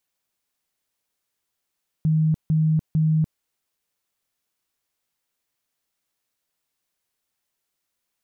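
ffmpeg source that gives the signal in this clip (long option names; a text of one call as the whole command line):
ffmpeg -f lavfi -i "aevalsrc='0.158*sin(2*PI*157*mod(t,0.45))*lt(mod(t,0.45),46/157)':duration=1.35:sample_rate=44100" out.wav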